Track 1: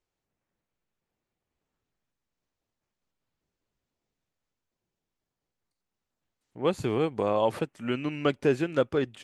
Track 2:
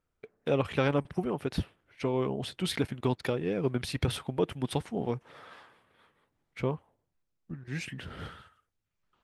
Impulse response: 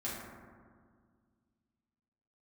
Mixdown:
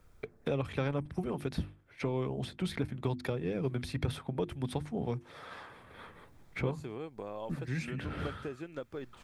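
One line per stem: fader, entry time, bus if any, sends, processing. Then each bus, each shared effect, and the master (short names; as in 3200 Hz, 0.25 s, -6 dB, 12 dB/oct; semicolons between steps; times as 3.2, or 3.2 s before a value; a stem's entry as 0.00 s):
-12.5 dB, 0.00 s, no send, compressor, threshold -24 dBFS, peak gain reduction 6.5 dB
-5.5 dB, 0.00 s, no send, low shelf 120 Hz +11 dB; notches 50/100/150/200/250/300/350 Hz; three-band squash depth 70%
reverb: off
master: notch 2900 Hz, Q 12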